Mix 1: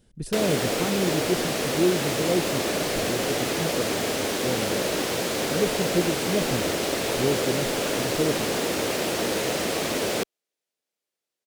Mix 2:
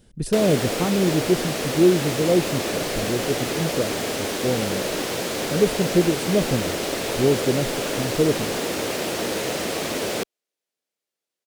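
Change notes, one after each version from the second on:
speech +6.0 dB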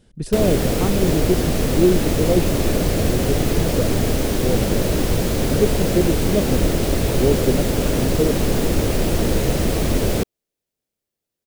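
speech: add high-shelf EQ 10,000 Hz −9.5 dB
background: remove meter weighting curve A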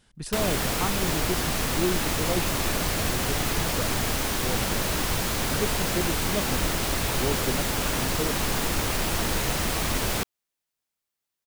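master: add low shelf with overshoot 700 Hz −9.5 dB, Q 1.5

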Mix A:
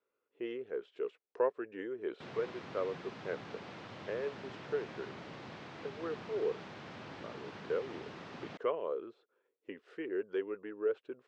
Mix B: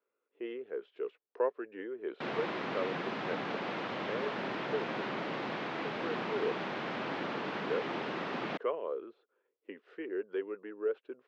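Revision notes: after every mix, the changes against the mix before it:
background +12.0 dB
master: add three-way crossover with the lows and the highs turned down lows −22 dB, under 170 Hz, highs −13 dB, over 4,100 Hz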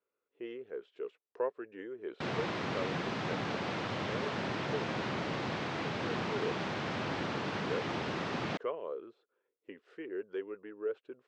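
speech −3.0 dB
master: remove three-way crossover with the lows and the highs turned down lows −22 dB, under 170 Hz, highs −13 dB, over 4,100 Hz

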